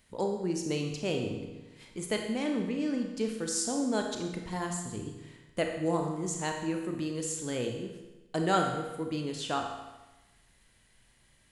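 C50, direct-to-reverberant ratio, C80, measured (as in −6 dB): 4.5 dB, 2.5 dB, 6.5 dB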